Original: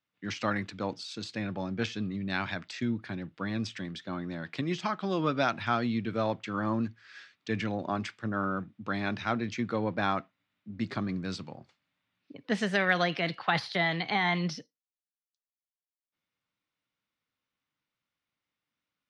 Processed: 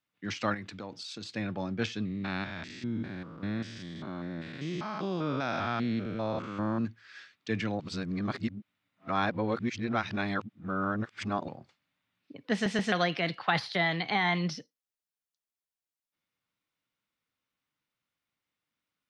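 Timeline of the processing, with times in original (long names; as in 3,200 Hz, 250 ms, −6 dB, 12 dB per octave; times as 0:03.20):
0:00.54–0:01.31: downward compressor 4 to 1, threshold −37 dBFS
0:02.05–0:06.85: spectrum averaged block by block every 200 ms
0:07.80–0:11.48: reverse
0:12.53: stutter in place 0.13 s, 3 plays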